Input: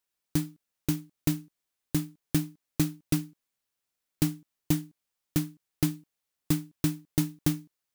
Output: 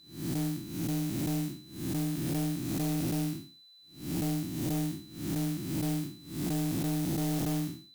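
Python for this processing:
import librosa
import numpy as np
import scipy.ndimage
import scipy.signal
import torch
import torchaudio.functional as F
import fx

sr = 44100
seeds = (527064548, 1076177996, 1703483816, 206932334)

y = fx.spec_blur(x, sr, span_ms=274.0)
y = y + 10.0 ** (-64.0 / 20.0) * np.sin(2.0 * np.pi * 4000.0 * np.arange(len(y)) / sr)
y = fx.cheby_harmonics(y, sr, harmonics=(5,), levels_db=(-8,), full_scale_db=-24.5)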